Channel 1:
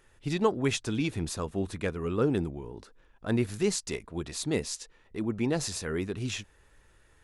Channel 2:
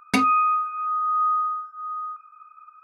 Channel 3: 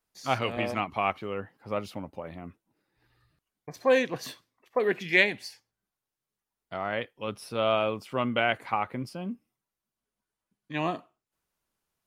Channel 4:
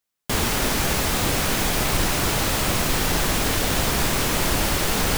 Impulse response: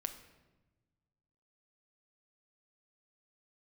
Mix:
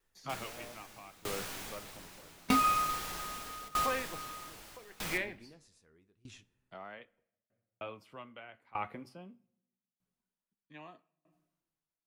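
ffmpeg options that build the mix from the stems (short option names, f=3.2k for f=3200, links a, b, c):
-filter_complex "[0:a]alimiter=limit=-20dB:level=0:latency=1:release=246,volume=-15.5dB,asplit=2[a][b];[b]volume=-8dB[c];[1:a]adelay=2350,volume=-1.5dB[d];[2:a]acrossover=split=320|720|1600|3400[e][f][g][h][i];[e]acompressor=threshold=-41dB:ratio=4[j];[f]acompressor=threshold=-37dB:ratio=4[k];[g]acompressor=threshold=-31dB:ratio=4[l];[h]acompressor=threshold=-33dB:ratio=4[m];[i]acompressor=threshold=-52dB:ratio=4[n];[j][k][l][m][n]amix=inputs=5:normalize=0,volume=-1dB,asplit=3[o][p][q];[o]atrim=end=7.2,asetpts=PTS-STARTPTS,afade=t=out:st=7.196:d=0.004:c=hsin[r];[p]atrim=start=7.2:end=7.81,asetpts=PTS-STARTPTS,volume=0[s];[q]atrim=start=7.81,asetpts=PTS-STARTPTS,afade=t=in:d=0.004:c=hsin[t];[r][s][t]concat=n=3:v=0:a=1,asplit=3[u][v][w];[v]volume=-10.5dB[x];[3:a]lowshelf=f=430:g=-9,volume=-2.5dB,asplit=2[y][z];[z]volume=-8.5dB[aa];[w]apad=whole_len=228245[ab];[y][ab]sidechaincompress=threshold=-48dB:ratio=8:attack=6.3:release=942[ac];[4:a]atrim=start_sample=2205[ad];[c][x][aa]amix=inputs=3:normalize=0[ae];[ae][ad]afir=irnorm=-1:irlink=0[af];[a][d][u][ac][af]amix=inputs=5:normalize=0,flanger=delay=4.3:depth=7.5:regen=-73:speed=0.28:shape=sinusoidal,aeval=exprs='val(0)*pow(10,-23*if(lt(mod(0.8*n/s,1),2*abs(0.8)/1000),1-mod(0.8*n/s,1)/(2*abs(0.8)/1000),(mod(0.8*n/s,1)-2*abs(0.8)/1000)/(1-2*abs(0.8)/1000))/20)':c=same"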